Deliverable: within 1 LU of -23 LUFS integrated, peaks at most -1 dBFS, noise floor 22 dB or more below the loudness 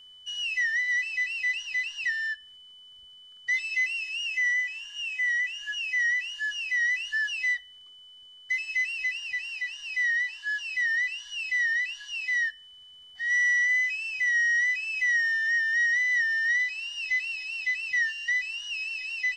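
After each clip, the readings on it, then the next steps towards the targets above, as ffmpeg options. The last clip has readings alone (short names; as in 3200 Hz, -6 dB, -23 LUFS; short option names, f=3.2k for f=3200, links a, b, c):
steady tone 3000 Hz; tone level -48 dBFS; loudness -26.0 LUFS; peak -19.0 dBFS; loudness target -23.0 LUFS
-> -af "bandreject=f=3k:w=30"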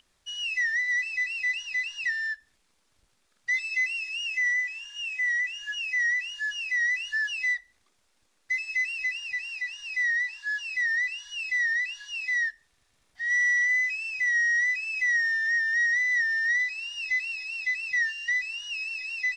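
steady tone none; loudness -26.0 LUFS; peak -19.5 dBFS; loudness target -23.0 LUFS
-> -af "volume=3dB"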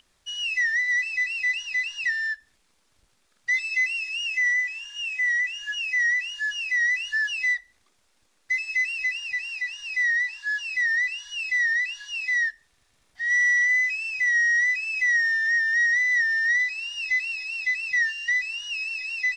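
loudness -23.0 LUFS; peak -16.5 dBFS; noise floor -67 dBFS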